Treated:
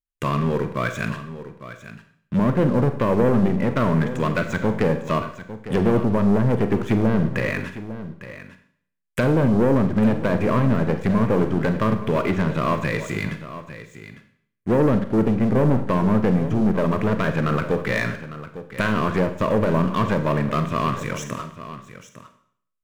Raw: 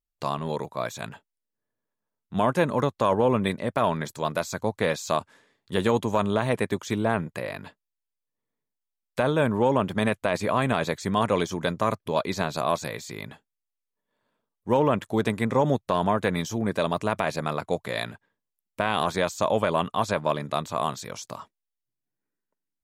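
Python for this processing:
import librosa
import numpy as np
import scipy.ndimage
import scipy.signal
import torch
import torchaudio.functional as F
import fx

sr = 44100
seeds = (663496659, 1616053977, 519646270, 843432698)

y = fx.fixed_phaser(x, sr, hz=1900.0, stages=4)
y = fx.env_lowpass_down(y, sr, base_hz=740.0, full_db=-24.0)
y = fx.leveller(y, sr, passes=3)
y = y + 10.0 ** (-13.5 / 20.0) * np.pad(y, (int(853 * sr / 1000.0), 0))[:len(y)]
y = fx.rev_schroeder(y, sr, rt60_s=0.59, comb_ms=33, drr_db=8.0)
y = y * librosa.db_to_amplitude(1.5)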